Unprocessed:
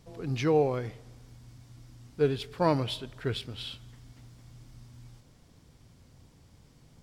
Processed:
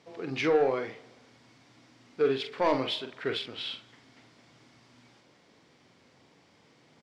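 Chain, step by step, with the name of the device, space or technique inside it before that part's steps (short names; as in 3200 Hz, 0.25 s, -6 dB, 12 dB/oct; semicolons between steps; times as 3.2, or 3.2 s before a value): intercom (BPF 310–4700 Hz; bell 2100 Hz +4 dB 0.54 oct; soft clip -21 dBFS, distortion -13 dB; doubler 45 ms -7 dB); gain +3.5 dB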